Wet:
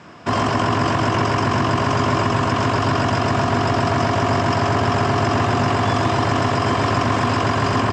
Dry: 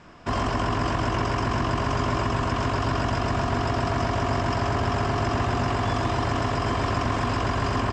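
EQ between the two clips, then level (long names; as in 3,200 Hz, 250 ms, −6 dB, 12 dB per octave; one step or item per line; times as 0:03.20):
high-pass filter 92 Hz 24 dB per octave
+7.0 dB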